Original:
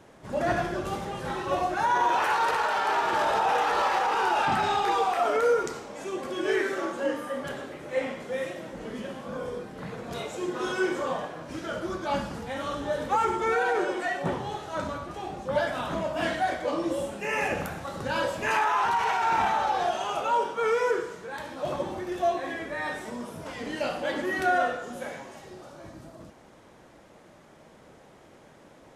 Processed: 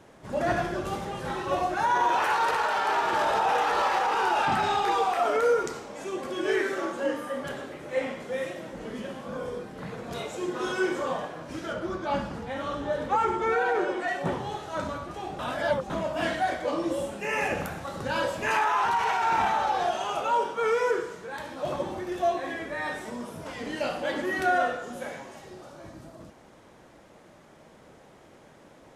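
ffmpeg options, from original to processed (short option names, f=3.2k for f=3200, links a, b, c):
-filter_complex "[0:a]asettb=1/sr,asplit=3[a][b][c];[a]atrim=end=11.734[d];[b]atrim=start=11.73:end=14.08,asetpts=PTS-STARTPTS,afade=t=in:d=0.004:c=qsin,afade=t=out:st=2.346:d=0.004:c=qsin,aemphasis=mode=reproduction:type=cd[e];[c]atrim=start=14.076[f];[d][e]acrossfade=d=0.004:c1=hsin:c2=qsin[g];[g][f]acrossfade=d=0.004:c1=qsin:c2=hsin,asplit=3[h][i][j];[h]atrim=end=15.392[k];[i]atrim=start=15.388:end=15.902,asetpts=PTS-STARTPTS,areverse[l];[j]atrim=start=15.898[m];[k][l]acrossfade=d=0.004:c1=hsin:c2=hsin[n];[n][m]acrossfade=d=0.004:c1=hsin:c2=hsin"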